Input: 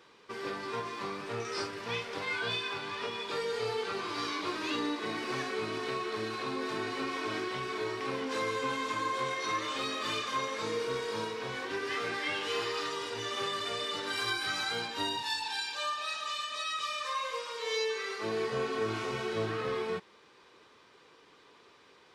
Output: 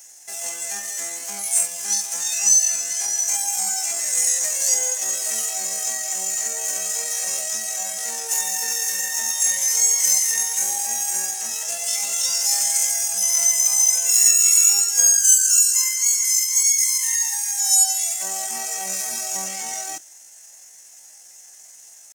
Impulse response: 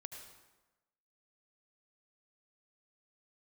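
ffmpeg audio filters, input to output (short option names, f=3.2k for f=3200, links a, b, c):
-af "asetrate=76340,aresample=44100,atempo=0.577676,crystalizer=i=5:c=0,highshelf=f=5k:t=q:w=3:g=8,volume=-4dB"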